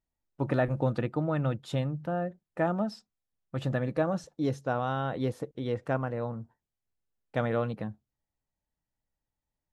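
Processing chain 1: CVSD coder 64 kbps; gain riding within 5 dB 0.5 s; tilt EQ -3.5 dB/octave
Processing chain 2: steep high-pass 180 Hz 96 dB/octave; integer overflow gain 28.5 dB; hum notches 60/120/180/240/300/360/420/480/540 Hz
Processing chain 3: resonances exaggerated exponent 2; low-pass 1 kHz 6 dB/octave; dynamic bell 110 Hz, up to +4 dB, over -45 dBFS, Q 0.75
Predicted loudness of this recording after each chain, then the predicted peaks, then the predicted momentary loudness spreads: -25.5 LUFS, -35.5 LUFS, -31.0 LUFS; -12.0 dBFS, -25.0 dBFS, -15.0 dBFS; 8 LU, 7 LU, 9 LU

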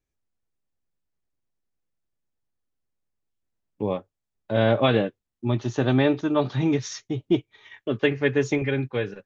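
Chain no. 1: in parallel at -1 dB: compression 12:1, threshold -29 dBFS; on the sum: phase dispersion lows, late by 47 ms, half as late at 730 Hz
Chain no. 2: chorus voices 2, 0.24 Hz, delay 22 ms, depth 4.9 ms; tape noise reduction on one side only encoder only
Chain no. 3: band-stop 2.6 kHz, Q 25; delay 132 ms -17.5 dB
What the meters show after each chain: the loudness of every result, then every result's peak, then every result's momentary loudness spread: -22.5 LUFS, -28.0 LUFS, -24.5 LUFS; -6.0 dBFS, -10.0 dBFS, -8.0 dBFS; 10 LU, 12 LU, 11 LU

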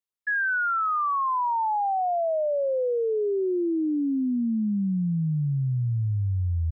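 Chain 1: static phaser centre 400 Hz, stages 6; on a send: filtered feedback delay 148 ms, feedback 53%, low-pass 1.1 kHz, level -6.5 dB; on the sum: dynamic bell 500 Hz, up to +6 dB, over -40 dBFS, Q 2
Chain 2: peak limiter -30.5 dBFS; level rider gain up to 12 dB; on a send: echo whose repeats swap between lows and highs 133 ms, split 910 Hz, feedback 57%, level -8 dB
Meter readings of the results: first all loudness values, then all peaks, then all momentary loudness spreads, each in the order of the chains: -25.5 LUFS, -22.0 LUFS; -14.5 dBFS, -14.5 dBFS; 21 LU, 2 LU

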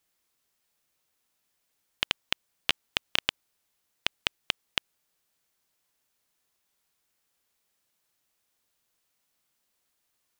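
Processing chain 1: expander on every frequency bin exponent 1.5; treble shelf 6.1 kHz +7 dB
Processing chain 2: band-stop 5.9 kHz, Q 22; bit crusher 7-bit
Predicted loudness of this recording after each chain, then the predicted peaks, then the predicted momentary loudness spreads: -31.5 LUFS, -31.5 LUFS; -2.5 dBFS, -3.5 dBFS; 5 LU, 5 LU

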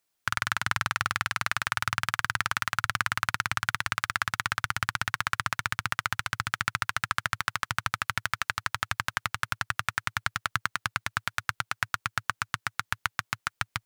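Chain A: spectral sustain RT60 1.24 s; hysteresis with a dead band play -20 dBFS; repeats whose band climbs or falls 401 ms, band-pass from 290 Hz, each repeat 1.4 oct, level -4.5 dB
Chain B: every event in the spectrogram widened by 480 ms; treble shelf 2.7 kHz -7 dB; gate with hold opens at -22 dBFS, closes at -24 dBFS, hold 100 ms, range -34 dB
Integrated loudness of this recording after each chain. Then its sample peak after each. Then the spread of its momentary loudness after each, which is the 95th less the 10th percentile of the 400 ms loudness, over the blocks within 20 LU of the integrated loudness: -27.0 LUFS, -22.5 LUFS; -3.5 dBFS, -4.0 dBFS; 2 LU, 1 LU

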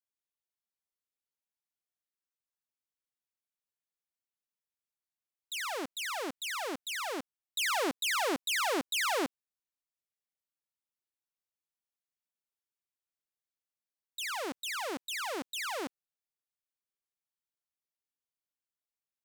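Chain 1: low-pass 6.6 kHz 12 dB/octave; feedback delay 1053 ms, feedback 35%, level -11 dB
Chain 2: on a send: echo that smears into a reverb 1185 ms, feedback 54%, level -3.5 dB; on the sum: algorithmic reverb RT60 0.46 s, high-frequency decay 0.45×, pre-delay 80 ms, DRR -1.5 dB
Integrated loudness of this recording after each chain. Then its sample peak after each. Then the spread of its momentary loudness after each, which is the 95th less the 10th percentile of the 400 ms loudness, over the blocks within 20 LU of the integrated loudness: -34.5 LUFS, -30.5 LUFS; -23.0 dBFS, -14.0 dBFS; 20 LU, 17 LU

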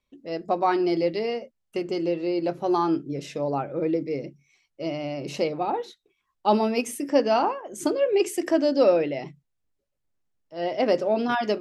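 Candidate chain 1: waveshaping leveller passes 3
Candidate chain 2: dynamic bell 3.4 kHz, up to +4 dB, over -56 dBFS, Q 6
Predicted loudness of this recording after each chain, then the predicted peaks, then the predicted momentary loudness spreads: -17.0 LUFS, -25.5 LUFS; -7.5 dBFS, -7.5 dBFS; 9 LU, 12 LU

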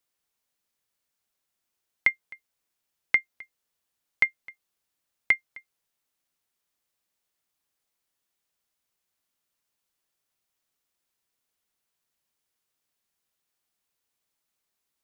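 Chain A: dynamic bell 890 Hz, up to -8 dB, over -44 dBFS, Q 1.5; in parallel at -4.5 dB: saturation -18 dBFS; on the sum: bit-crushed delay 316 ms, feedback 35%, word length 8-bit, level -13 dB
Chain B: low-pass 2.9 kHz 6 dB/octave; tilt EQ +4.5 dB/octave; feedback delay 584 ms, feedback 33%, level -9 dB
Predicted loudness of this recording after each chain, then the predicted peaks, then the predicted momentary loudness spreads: -26.5 LUFS, -25.5 LUFS; -7.0 dBFS, -5.0 dBFS; 13 LU, 19 LU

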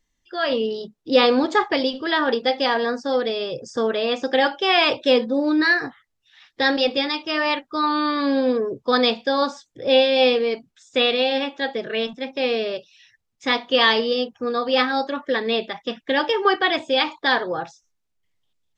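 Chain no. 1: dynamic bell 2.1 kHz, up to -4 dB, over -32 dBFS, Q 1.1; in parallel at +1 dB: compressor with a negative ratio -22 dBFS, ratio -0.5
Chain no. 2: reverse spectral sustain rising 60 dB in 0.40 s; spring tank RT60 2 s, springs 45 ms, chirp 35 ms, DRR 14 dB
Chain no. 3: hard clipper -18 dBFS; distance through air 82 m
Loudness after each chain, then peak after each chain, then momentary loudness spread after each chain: -17.0 LUFS, -19.5 LUFS, -24.0 LUFS; -2.5 dBFS, -3.0 dBFS, -18.0 dBFS; 5 LU, 10 LU, 7 LU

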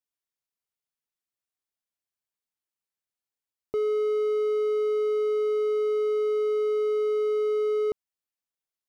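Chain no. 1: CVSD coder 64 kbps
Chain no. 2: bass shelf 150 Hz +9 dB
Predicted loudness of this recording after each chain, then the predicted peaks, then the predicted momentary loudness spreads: -26.0 LUFS, -25.0 LUFS; -20.0 dBFS, -18.0 dBFS; 2 LU, 2 LU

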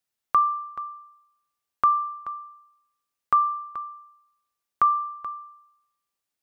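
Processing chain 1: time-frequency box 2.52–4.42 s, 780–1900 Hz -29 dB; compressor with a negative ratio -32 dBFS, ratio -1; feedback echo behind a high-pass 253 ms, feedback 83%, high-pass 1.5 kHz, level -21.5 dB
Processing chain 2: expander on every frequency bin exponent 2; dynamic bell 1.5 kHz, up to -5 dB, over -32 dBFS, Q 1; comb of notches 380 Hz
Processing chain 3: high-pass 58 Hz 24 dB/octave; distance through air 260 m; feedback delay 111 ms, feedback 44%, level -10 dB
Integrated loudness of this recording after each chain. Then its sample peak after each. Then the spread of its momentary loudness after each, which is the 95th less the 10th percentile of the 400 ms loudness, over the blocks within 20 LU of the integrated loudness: -32.5 LUFS, -33.0 LUFS, -25.0 LUFS; -15.0 dBFS, -16.0 dBFS, -12.0 dBFS; 19 LU, 11 LU, 20 LU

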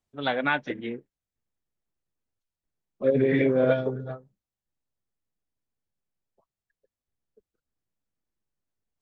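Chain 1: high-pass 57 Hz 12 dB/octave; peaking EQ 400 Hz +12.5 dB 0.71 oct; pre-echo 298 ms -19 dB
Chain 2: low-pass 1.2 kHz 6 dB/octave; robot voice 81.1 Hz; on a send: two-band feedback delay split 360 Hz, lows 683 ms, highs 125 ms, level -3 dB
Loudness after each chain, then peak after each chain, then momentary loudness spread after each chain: -18.0 LUFS, -30.0 LUFS; -2.5 dBFS, -11.0 dBFS; 21 LU, 23 LU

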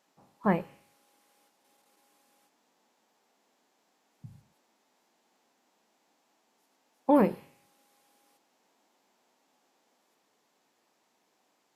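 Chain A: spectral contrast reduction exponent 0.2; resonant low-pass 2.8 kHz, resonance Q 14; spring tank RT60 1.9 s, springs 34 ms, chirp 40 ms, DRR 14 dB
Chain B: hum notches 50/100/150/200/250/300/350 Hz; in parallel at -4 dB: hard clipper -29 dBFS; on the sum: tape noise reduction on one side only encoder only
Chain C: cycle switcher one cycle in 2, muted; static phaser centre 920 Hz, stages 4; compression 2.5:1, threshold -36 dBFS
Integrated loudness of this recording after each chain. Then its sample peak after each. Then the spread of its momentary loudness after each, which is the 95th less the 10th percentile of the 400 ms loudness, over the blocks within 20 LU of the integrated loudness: -19.0 LUFS, -27.0 LUFS, -42.0 LUFS; -2.0 dBFS, -11.0 dBFS, -20.5 dBFS; 19 LU, 15 LU, 19 LU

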